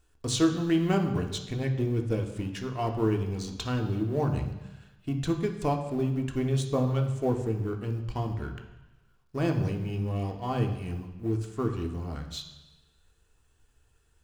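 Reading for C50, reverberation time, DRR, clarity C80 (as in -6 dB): 8.0 dB, 1.1 s, 3.0 dB, 10.5 dB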